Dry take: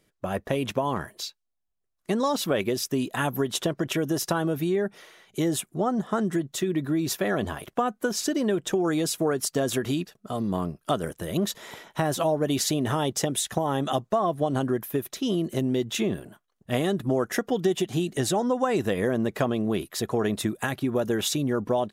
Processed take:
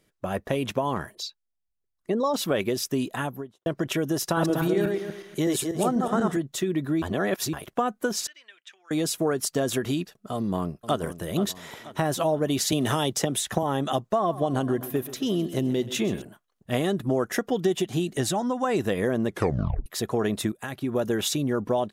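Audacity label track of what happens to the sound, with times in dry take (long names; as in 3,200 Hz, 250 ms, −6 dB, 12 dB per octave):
1.150000	2.340000	spectral envelope exaggerated exponent 1.5
3.020000	3.660000	fade out and dull
4.250000	6.370000	feedback delay that plays each chunk backwards 122 ms, feedback 44%, level −2.5 dB
7.020000	7.530000	reverse
8.270000	8.910000	four-pole ladder band-pass 2,700 Hz, resonance 40%
10.350000	11.010000	delay throw 480 ms, feedback 50%, level −12.5 dB
12.720000	13.630000	multiband upward and downward compressor depth 70%
14.160000	16.220000	repeating echo 130 ms, feedback 60%, level −15 dB
18.230000	18.650000	parametric band 440 Hz −10 dB 0.43 octaves
19.290000	19.290000	tape stop 0.57 s
20.520000	21.000000	fade in, from −12 dB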